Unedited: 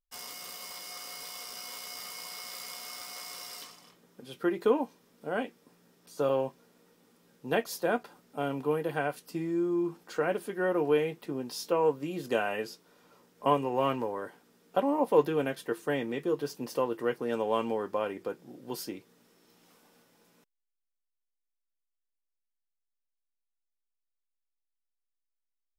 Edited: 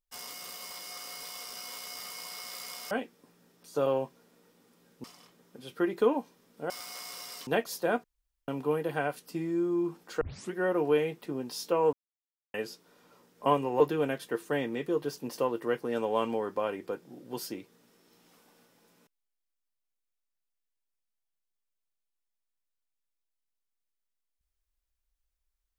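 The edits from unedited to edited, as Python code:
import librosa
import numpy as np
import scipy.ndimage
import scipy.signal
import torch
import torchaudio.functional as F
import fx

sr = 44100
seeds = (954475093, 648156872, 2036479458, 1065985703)

y = fx.edit(x, sr, fx.swap(start_s=2.91, length_s=0.77, other_s=5.34, other_length_s=2.13),
    fx.room_tone_fill(start_s=8.04, length_s=0.44),
    fx.tape_start(start_s=10.21, length_s=0.32),
    fx.silence(start_s=11.93, length_s=0.61),
    fx.cut(start_s=13.8, length_s=1.37), tone=tone)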